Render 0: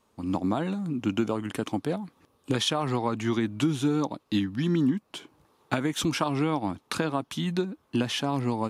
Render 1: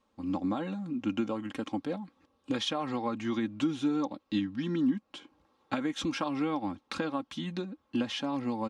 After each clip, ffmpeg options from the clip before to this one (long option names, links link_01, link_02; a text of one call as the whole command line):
ffmpeg -i in.wav -af "lowpass=5600,aecho=1:1:3.7:0.62,volume=-6.5dB" out.wav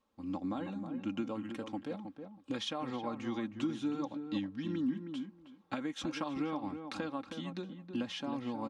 ffmpeg -i in.wav -filter_complex "[0:a]asplit=2[link_01][link_02];[link_02]adelay=318,lowpass=frequency=1300:poles=1,volume=-7dB,asplit=2[link_03][link_04];[link_04]adelay=318,lowpass=frequency=1300:poles=1,volume=0.16,asplit=2[link_05][link_06];[link_06]adelay=318,lowpass=frequency=1300:poles=1,volume=0.16[link_07];[link_01][link_03][link_05][link_07]amix=inputs=4:normalize=0,volume=-6dB" out.wav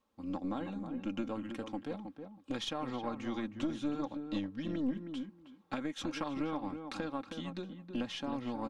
ffmpeg -i in.wav -af "aeval=exprs='(tanh(22.4*val(0)+0.5)-tanh(0.5))/22.4':channel_layout=same,volume=2dB" out.wav